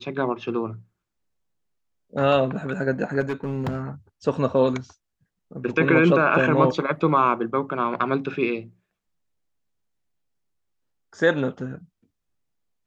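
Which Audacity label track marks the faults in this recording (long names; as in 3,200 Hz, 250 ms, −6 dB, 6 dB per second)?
3.200000	3.820000	clipping −21.5 dBFS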